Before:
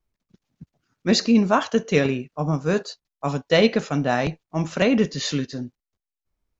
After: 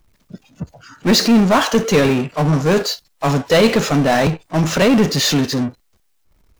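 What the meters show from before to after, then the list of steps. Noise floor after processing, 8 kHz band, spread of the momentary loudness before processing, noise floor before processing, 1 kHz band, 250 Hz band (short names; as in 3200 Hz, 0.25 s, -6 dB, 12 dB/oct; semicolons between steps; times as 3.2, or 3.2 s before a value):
-61 dBFS, n/a, 12 LU, under -85 dBFS, +7.0 dB, +6.5 dB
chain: power-law curve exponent 0.5; spectral noise reduction 15 dB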